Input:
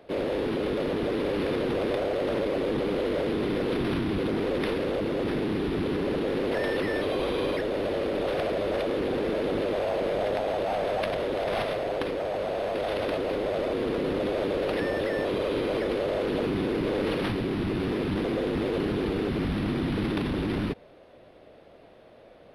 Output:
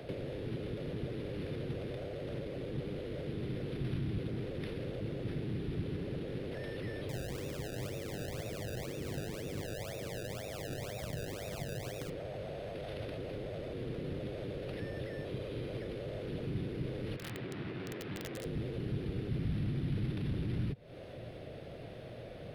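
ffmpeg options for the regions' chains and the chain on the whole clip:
ffmpeg -i in.wav -filter_complex "[0:a]asettb=1/sr,asplit=3[link_01][link_02][link_03];[link_01]atrim=end=7.094[link_04];[link_02]atrim=start=7.09:end=12.1,asetpts=PTS-STARTPTS,afade=type=in:duration=0.004:curve=qsin,afade=type=out:start_time=5.006:duration=0.004:curve=qsin,highpass=54,acrusher=samples=28:mix=1:aa=0.000001:lfo=1:lforange=28:lforate=2[link_05];[link_03]atrim=start=12.096[link_06];[link_04][link_05]acrossfade=duration=0.004:curve1=hsin:curve2=qsin[link_07];[link_07][link_06]acrossfade=duration=0.004:curve1=qsin:curve2=hsin,asettb=1/sr,asplit=3[link_08][link_09][link_10];[link_08]atrim=end=17.164[link_11];[link_09]atrim=start=17.16:end=18.45,asetpts=PTS-STARTPTS,afade=type=in:duration=0.004:curve=qsin,afade=type=out:start_time=1.286:duration=0.004:curve=qsin,bandpass=frequency=1200:width_type=q:width=0.7,tremolo=f=80:d=0.333,aeval=exprs='(mod(22.4*val(0)+1,2)-1)/22.4':channel_layout=same[link_12];[link_10]atrim=start=18.446[link_13];[link_11][link_12]acrossfade=duration=0.004:curve1=hsin:curve2=qsin[link_14];[link_14][link_13]acrossfade=duration=0.004:curve1=qsin:curve2=hsin,acompressor=threshold=-42dB:ratio=6,equalizer=frequency=125:width_type=o:width=1:gain=10,equalizer=frequency=250:width_type=o:width=1:gain=-3,equalizer=frequency=1000:width_type=o:width=1:gain=-9,acrossover=split=170[link_15][link_16];[link_16]acompressor=threshold=-58dB:ratio=1.5[link_17];[link_15][link_17]amix=inputs=2:normalize=0,volume=8.5dB" out.wav

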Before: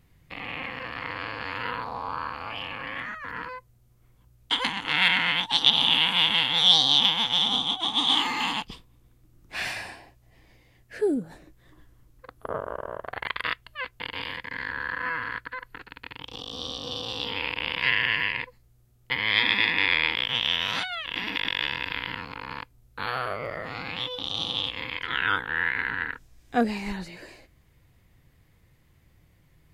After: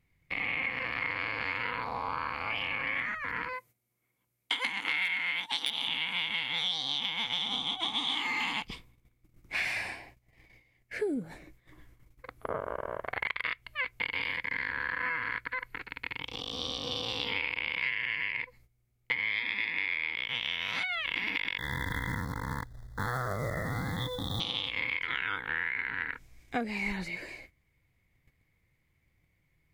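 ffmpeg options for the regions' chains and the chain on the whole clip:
ffmpeg -i in.wav -filter_complex "[0:a]asettb=1/sr,asplit=3[link_01][link_02][link_03];[link_01]atrim=end=3.534[link_04];[link_02]atrim=start=3.53:end=5.88,asetpts=PTS-STARTPTS,afade=type=in:duration=0.004:curve=qsin,afade=type=out:start_time=2.346:duration=0.004:curve=qsin,highpass=210,equalizer=frequency=12000:width=0.68:gain=8,aeval=exprs='0.501*(abs(mod(val(0)/0.501+3,4)-2)-1)':channel_layout=same[link_05];[link_03]atrim=start=5.876[link_06];[link_04][link_05]acrossfade=duration=0.004:curve1=hsin:curve2=qsin[link_07];[link_07][link_06]acrossfade=duration=0.004:curve1=qsin:curve2=hsin,asettb=1/sr,asplit=3[link_08][link_09][link_10];[link_08]atrim=end=21.584[link_11];[link_09]atrim=start=21.58:end=24.4,asetpts=PTS-STARTPTS,afade=type=in:duration=0.004:curve=qsin,afade=type=out:start_time=2.816:duration=0.004:curve=qsin,bass=frequency=250:gain=13,treble=frequency=4000:gain=-14,acrusher=bits=4:mode=log:mix=0:aa=0.000001,asuperstop=centerf=2600:order=20:qfactor=2[link_12];[link_10]atrim=start=24.396[link_13];[link_11][link_12]acrossfade=duration=0.004:curve1=hsin:curve2=qsin[link_14];[link_14][link_13]acrossfade=duration=0.004:curve1=qsin:curve2=hsin,agate=range=-12dB:threshold=-55dB:ratio=16:detection=peak,equalizer=frequency=2200:width=5.7:gain=13.5,acompressor=threshold=-27dB:ratio=10,volume=-1dB" out.wav

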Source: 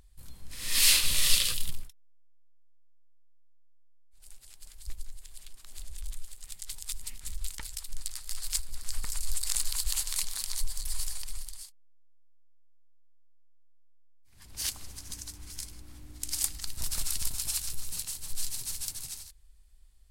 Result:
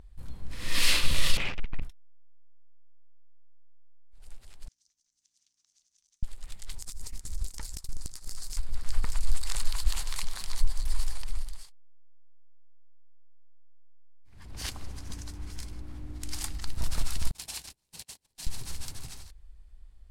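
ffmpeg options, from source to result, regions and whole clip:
ffmpeg -i in.wav -filter_complex "[0:a]asettb=1/sr,asplit=3[link_01][link_02][link_03];[link_01]atrim=end=1.374[link_04];[link_02]atrim=start=1.37:end=1.82,asetpts=PTS-STARTPTS,afade=type=in:duration=0.004:curve=qsin,afade=type=out:start_time=0.446:duration=0.004:curve=qsin,acrusher=bits=7:dc=4:mix=0:aa=0.000001,lowpass=frequency=2300:width_type=q:width=4.5,aeval=exprs='(tanh(31.6*val(0)+0.45)-tanh(0.45))/31.6':channel_layout=same[link_05];[link_03]atrim=start=1.816[link_06];[link_04][link_05]acrossfade=duration=0.004:curve1=hsin:curve2=qsin[link_07];[link_07][link_06]acrossfade=duration=0.004:curve1=qsin:curve2=hsin,asettb=1/sr,asplit=3[link_08][link_09][link_10];[link_08]atrim=end=4.684[link_11];[link_09]atrim=start=4.68:end=6.23,asetpts=PTS-STARTPTS,afade=type=in:duration=0.004:curve=qsin,afade=type=out:start_time=1.546:duration=0.004:curve=qsin,aeval=exprs='val(0)+0.00251*(sin(2*PI*60*n/s)+sin(2*PI*2*60*n/s)/2+sin(2*PI*3*60*n/s)/3+sin(2*PI*4*60*n/s)/4+sin(2*PI*5*60*n/s)/5)':channel_layout=same,acompressor=threshold=-34dB:ratio=4:attack=3.2:release=140:knee=1:detection=peak,bandpass=frequency=6000:width_type=q:width=8.3[link_12];[link_10]atrim=start=6.226[link_13];[link_11][link_12]acrossfade=duration=0.004:curve1=hsin:curve2=qsin[link_14];[link_14][link_13]acrossfade=duration=0.004:curve1=qsin:curve2=hsin,asettb=1/sr,asplit=3[link_15][link_16][link_17];[link_15]atrim=end=6.784[link_18];[link_16]atrim=start=6.78:end=8.57,asetpts=PTS-STARTPTS,afade=type=in:duration=0.004:curve=qsin,afade=type=out:start_time=1.786:duration=0.004:curve=qsin,highshelf=frequency=4200:width_type=q:width=1.5:gain=9.5,acompressor=threshold=-30dB:ratio=12:attack=3.2:release=140:knee=1:detection=peak,agate=range=-16dB:threshold=-40dB:ratio=16:release=100:detection=peak[link_19];[link_17]atrim=start=8.566[link_20];[link_18][link_19]acrossfade=duration=0.004:curve1=hsin:curve2=qsin[link_21];[link_21][link_20]acrossfade=duration=0.004:curve1=qsin:curve2=hsin,asettb=1/sr,asplit=3[link_22][link_23][link_24];[link_22]atrim=end=17.314[link_25];[link_23]atrim=start=17.31:end=18.47,asetpts=PTS-STARTPTS,afade=type=in:duration=0.004:curve=qsin,afade=type=out:start_time=1.156:duration=0.004:curve=qsin,highpass=frequency=330:poles=1,agate=range=-31dB:threshold=-38dB:ratio=16:release=100:detection=peak,equalizer=frequency=1300:width=2.8:gain=-8[link_26];[link_24]atrim=start=18.466[link_27];[link_25][link_26]acrossfade=duration=0.004:curve1=hsin:curve2=qsin[link_28];[link_28][link_27]acrossfade=duration=0.004:curve1=qsin:curve2=hsin,lowpass=frequency=1200:poles=1,alimiter=level_in=16.5dB:limit=-1dB:release=50:level=0:latency=1,volume=-8.5dB" out.wav

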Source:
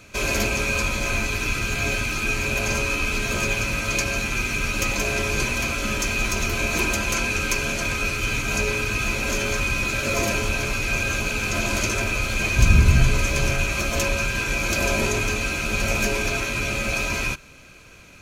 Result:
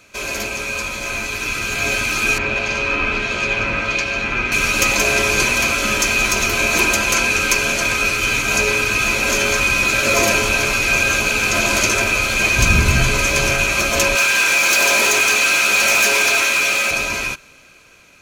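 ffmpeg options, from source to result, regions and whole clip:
ffmpeg -i in.wav -filter_complex "[0:a]asettb=1/sr,asplit=3[link_01][link_02][link_03];[link_01]atrim=end=2.384[link_04];[link_02]atrim=start=2.38:end=4.52,asetpts=PTS-STARTPTS,afade=type=in:duration=0.004:curve=qsin,afade=type=out:start_time=2.136:duration=0.004:curve=qsin,lowpass=3300,acrossover=split=2500[link_05][link_06];[link_05]aeval=exprs='val(0)*(1-0.5/2+0.5/2*cos(2*PI*1.5*n/s))':channel_layout=same[link_07];[link_06]aeval=exprs='val(0)*(1-0.5/2-0.5/2*cos(2*PI*1.5*n/s))':channel_layout=same[link_08];[link_07][link_08]amix=inputs=2:normalize=0[link_09];[link_03]atrim=start=4.516[link_10];[link_04][link_09]acrossfade=duration=0.004:curve1=hsin:curve2=qsin[link_11];[link_11][link_10]acrossfade=duration=0.004:curve1=qsin:curve2=hsin,asettb=1/sr,asplit=3[link_12][link_13][link_14];[link_12]atrim=end=14.154[link_15];[link_13]atrim=start=14.15:end=16.91,asetpts=PTS-STARTPTS,afade=type=in:duration=0.004:curve=qsin,afade=type=out:start_time=2.756:duration=0.004:curve=qsin,highpass=frequency=820:poles=1,asoftclip=type=hard:threshold=-25dB,acontrast=28[link_16];[link_14]atrim=start=16.906[link_17];[link_15][link_16]acrossfade=duration=0.004:curve1=hsin:curve2=qsin[link_18];[link_18][link_17]acrossfade=duration=0.004:curve1=qsin:curve2=hsin,lowshelf=frequency=230:gain=-11,dynaudnorm=framelen=340:gausssize=11:maxgain=11.5dB" out.wav

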